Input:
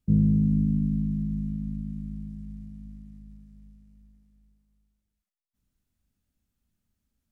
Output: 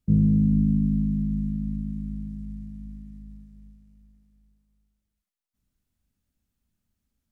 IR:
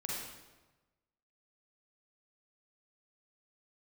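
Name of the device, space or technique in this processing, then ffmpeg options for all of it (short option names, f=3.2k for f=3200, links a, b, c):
keyed gated reverb: -filter_complex "[0:a]asplit=3[a][b][c];[1:a]atrim=start_sample=2205[d];[b][d]afir=irnorm=-1:irlink=0[e];[c]apad=whole_len=322705[f];[e][f]sidechaingate=range=-33dB:threshold=-48dB:ratio=16:detection=peak,volume=-11.5dB[g];[a][g]amix=inputs=2:normalize=0"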